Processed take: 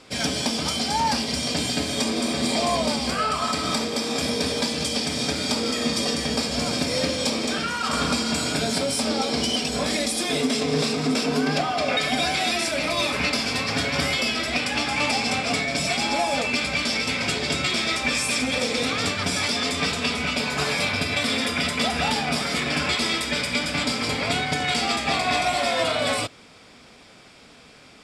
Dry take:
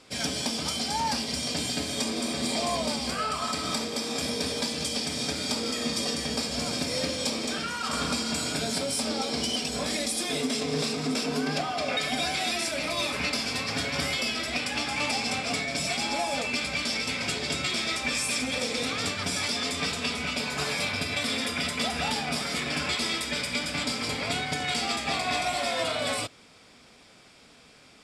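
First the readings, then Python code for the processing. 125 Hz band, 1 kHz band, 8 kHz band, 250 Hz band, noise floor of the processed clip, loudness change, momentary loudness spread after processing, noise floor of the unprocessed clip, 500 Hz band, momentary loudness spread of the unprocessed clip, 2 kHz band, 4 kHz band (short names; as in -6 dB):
+6.0 dB, +6.0 dB, +3.0 dB, +6.0 dB, -49 dBFS, +5.0 dB, 2 LU, -54 dBFS, +6.0 dB, 2 LU, +5.5 dB, +4.5 dB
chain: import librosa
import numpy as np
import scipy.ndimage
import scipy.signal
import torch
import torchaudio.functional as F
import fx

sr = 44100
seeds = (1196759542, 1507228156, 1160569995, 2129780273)

y = fx.high_shelf(x, sr, hz=5200.0, db=-4.5)
y = F.gain(torch.from_numpy(y), 6.0).numpy()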